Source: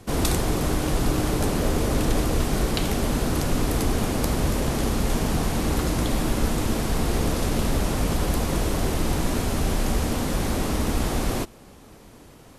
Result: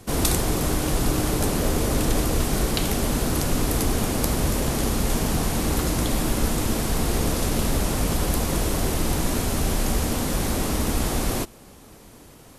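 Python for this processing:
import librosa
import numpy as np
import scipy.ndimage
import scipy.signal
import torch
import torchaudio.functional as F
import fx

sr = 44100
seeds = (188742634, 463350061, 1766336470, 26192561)

y = fx.high_shelf(x, sr, hz=6200.0, db=7.0)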